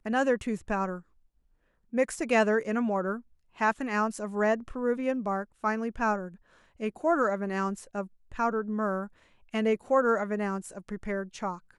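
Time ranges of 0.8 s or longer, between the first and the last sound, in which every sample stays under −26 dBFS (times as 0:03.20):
0:00.92–0:01.95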